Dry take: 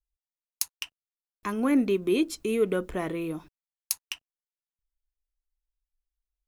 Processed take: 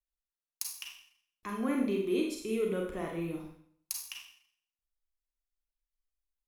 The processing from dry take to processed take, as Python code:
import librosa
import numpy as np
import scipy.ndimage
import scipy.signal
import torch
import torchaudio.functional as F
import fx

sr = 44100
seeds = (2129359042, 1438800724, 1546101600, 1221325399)

y = fx.low_shelf(x, sr, hz=190.0, db=7.0, at=(3.12, 4.13))
y = fx.rev_schroeder(y, sr, rt60_s=0.6, comb_ms=32, drr_db=0.0)
y = y * 10.0 ** (-9.0 / 20.0)